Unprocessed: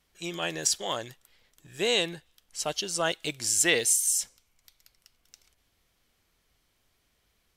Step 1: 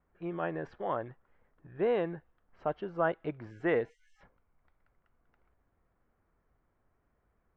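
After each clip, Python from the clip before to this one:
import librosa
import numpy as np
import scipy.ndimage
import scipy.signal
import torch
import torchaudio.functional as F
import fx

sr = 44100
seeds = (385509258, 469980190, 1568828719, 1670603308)

y = scipy.signal.sosfilt(scipy.signal.butter(4, 1500.0, 'lowpass', fs=sr, output='sos'), x)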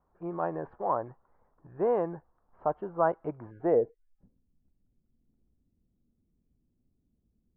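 y = fx.filter_sweep_lowpass(x, sr, from_hz=980.0, to_hz=240.0, start_s=3.57, end_s=4.15, q=2.3)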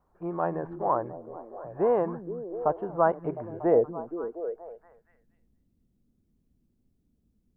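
y = fx.echo_stepped(x, sr, ms=236, hz=190.0, octaves=0.7, feedback_pct=70, wet_db=-5.5)
y = y * librosa.db_to_amplitude(3.0)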